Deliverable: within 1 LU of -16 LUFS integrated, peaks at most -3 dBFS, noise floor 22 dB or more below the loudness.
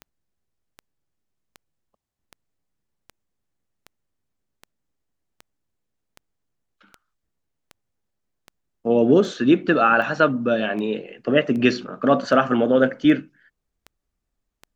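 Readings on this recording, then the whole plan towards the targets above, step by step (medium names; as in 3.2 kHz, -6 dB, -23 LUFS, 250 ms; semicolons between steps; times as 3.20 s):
clicks found 20; loudness -19.5 LUFS; peak level -3.0 dBFS; loudness target -16.0 LUFS
-> de-click; trim +3.5 dB; peak limiter -3 dBFS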